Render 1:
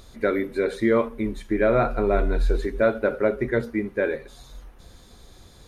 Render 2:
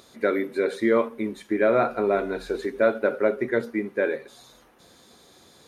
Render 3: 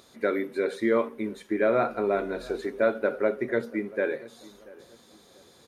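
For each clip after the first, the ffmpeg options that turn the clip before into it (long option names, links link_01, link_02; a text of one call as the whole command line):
ffmpeg -i in.wav -af "highpass=210" out.wav
ffmpeg -i in.wav -filter_complex "[0:a]asplit=2[link_01][link_02];[link_02]adelay=685,lowpass=frequency=1100:poles=1,volume=-20dB,asplit=2[link_03][link_04];[link_04]adelay=685,lowpass=frequency=1100:poles=1,volume=0.37,asplit=2[link_05][link_06];[link_06]adelay=685,lowpass=frequency=1100:poles=1,volume=0.37[link_07];[link_01][link_03][link_05][link_07]amix=inputs=4:normalize=0,volume=-3dB" out.wav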